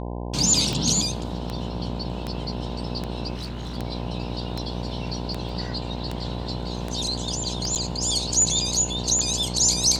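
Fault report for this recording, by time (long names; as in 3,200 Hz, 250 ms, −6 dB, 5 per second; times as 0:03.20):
mains buzz 60 Hz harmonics 17 −31 dBFS
scratch tick 78 rpm
0:03.35–0:03.77: clipping −28.5 dBFS
0:05.49: drop-out 2 ms
0:07.75–0:07.76: drop-out 8.1 ms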